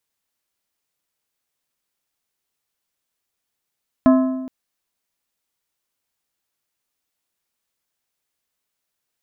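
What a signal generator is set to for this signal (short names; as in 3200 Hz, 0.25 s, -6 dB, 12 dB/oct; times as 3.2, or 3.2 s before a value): metal hit plate, length 0.42 s, lowest mode 260 Hz, decay 1.17 s, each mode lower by 6.5 dB, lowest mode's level -8 dB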